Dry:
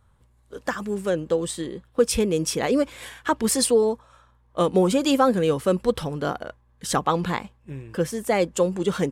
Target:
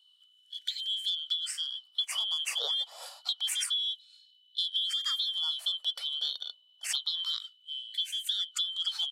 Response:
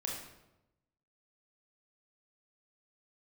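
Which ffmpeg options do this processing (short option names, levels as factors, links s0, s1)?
-filter_complex "[0:a]afftfilt=real='real(if(lt(b,272),68*(eq(floor(b/68),0)*1+eq(floor(b/68),1)*3+eq(floor(b/68),2)*0+eq(floor(b/68),3)*2)+mod(b,68),b),0)':imag='imag(if(lt(b,272),68*(eq(floor(b/68),0)*1+eq(floor(b/68),1)*3+eq(floor(b/68),2)*0+eq(floor(b/68),3)*2)+mod(b,68),b),0)':win_size=2048:overlap=0.75,lowshelf=f=88:g=-4.5,acrossover=split=350[s0][s1];[s1]acompressor=threshold=0.0631:ratio=10[s2];[s0][s2]amix=inputs=2:normalize=0,afftfilt=real='re*gte(b*sr/1024,430*pow(1500/430,0.5+0.5*sin(2*PI*0.28*pts/sr)))':imag='im*gte(b*sr/1024,430*pow(1500/430,0.5+0.5*sin(2*PI*0.28*pts/sr)))':win_size=1024:overlap=0.75,volume=0.631"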